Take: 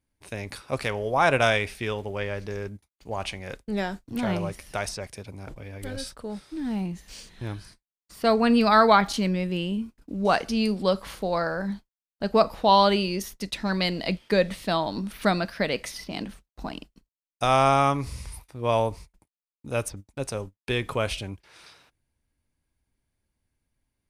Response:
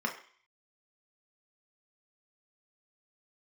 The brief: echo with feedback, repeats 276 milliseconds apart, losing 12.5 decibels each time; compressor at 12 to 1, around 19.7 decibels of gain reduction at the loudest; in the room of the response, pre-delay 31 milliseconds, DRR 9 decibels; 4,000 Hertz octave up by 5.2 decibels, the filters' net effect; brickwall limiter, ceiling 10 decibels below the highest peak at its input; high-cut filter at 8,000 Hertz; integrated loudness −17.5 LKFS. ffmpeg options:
-filter_complex "[0:a]lowpass=8000,equalizer=frequency=4000:width_type=o:gain=6.5,acompressor=threshold=-32dB:ratio=12,alimiter=level_in=3.5dB:limit=-24dB:level=0:latency=1,volume=-3.5dB,aecho=1:1:276|552|828:0.237|0.0569|0.0137,asplit=2[link_01][link_02];[1:a]atrim=start_sample=2205,adelay=31[link_03];[link_02][link_03]afir=irnorm=-1:irlink=0,volume=-15.5dB[link_04];[link_01][link_04]amix=inputs=2:normalize=0,volume=21dB"

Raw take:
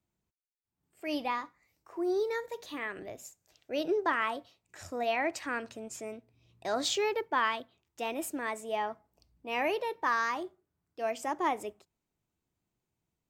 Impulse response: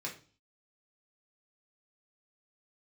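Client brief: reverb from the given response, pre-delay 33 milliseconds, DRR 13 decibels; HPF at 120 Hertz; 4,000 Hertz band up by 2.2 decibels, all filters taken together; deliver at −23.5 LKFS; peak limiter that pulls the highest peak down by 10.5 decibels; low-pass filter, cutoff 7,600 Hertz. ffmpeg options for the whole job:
-filter_complex "[0:a]highpass=120,lowpass=7600,equalizer=frequency=4000:width_type=o:gain=3,alimiter=level_in=1.5dB:limit=-24dB:level=0:latency=1,volume=-1.5dB,asplit=2[link_01][link_02];[1:a]atrim=start_sample=2205,adelay=33[link_03];[link_02][link_03]afir=irnorm=-1:irlink=0,volume=-14dB[link_04];[link_01][link_04]amix=inputs=2:normalize=0,volume=13dB"

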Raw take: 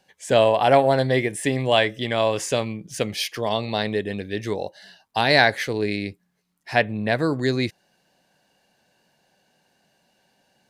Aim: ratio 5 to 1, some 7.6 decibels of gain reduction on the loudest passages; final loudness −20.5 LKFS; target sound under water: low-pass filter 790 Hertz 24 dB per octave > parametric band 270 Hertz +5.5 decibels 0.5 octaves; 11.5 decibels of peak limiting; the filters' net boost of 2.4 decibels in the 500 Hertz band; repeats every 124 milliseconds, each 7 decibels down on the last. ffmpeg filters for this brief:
ffmpeg -i in.wav -af "equalizer=frequency=500:width_type=o:gain=3,acompressor=threshold=-18dB:ratio=5,alimiter=limit=-17.5dB:level=0:latency=1,lowpass=frequency=790:width=0.5412,lowpass=frequency=790:width=1.3066,equalizer=frequency=270:width_type=o:width=0.5:gain=5.5,aecho=1:1:124|248|372|496|620:0.447|0.201|0.0905|0.0407|0.0183,volume=7.5dB" out.wav

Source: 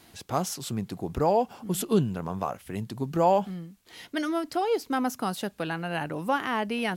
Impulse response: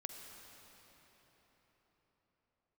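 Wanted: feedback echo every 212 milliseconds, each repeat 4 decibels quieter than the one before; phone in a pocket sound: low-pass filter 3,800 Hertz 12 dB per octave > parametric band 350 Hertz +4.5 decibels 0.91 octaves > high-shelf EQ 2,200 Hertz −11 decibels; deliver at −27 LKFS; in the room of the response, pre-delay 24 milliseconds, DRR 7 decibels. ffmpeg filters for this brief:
-filter_complex "[0:a]aecho=1:1:212|424|636|848|1060|1272|1484|1696|1908:0.631|0.398|0.25|0.158|0.0994|0.0626|0.0394|0.0249|0.0157,asplit=2[link_01][link_02];[1:a]atrim=start_sample=2205,adelay=24[link_03];[link_02][link_03]afir=irnorm=-1:irlink=0,volume=-4.5dB[link_04];[link_01][link_04]amix=inputs=2:normalize=0,lowpass=3800,equalizer=frequency=350:width_type=o:width=0.91:gain=4.5,highshelf=frequency=2200:gain=-11,volume=-2dB"

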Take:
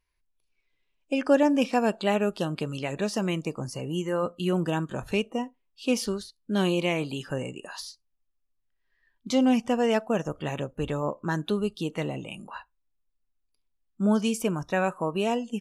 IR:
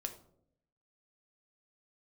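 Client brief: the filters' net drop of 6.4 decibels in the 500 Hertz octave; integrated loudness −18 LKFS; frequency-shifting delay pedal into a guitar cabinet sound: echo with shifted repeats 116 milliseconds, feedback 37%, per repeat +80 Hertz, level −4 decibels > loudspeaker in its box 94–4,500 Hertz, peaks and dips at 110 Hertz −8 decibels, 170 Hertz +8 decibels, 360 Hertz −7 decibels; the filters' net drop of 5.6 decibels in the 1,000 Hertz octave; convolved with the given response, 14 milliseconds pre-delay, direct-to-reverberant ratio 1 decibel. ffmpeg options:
-filter_complex "[0:a]equalizer=frequency=500:width_type=o:gain=-4.5,equalizer=frequency=1000:width_type=o:gain=-5.5,asplit=2[link_01][link_02];[1:a]atrim=start_sample=2205,adelay=14[link_03];[link_02][link_03]afir=irnorm=-1:irlink=0,volume=0.5dB[link_04];[link_01][link_04]amix=inputs=2:normalize=0,asplit=6[link_05][link_06][link_07][link_08][link_09][link_10];[link_06]adelay=116,afreqshift=80,volume=-4dB[link_11];[link_07]adelay=232,afreqshift=160,volume=-12.6dB[link_12];[link_08]adelay=348,afreqshift=240,volume=-21.3dB[link_13];[link_09]adelay=464,afreqshift=320,volume=-29.9dB[link_14];[link_10]adelay=580,afreqshift=400,volume=-38.5dB[link_15];[link_05][link_11][link_12][link_13][link_14][link_15]amix=inputs=6:normalize=0,highpass=94,equalizer=frequency=110:width_type=q:width=4:gain=-8,equalizer=frequency=170:width_type=q:width=4:gain=8,equalizer=frequency=360:width_type=q:width=4:gain=-7,lowpass=frequency=4500:width=0.5412,lowpass=frequency=4500:width=1.3066,volume=7dB"

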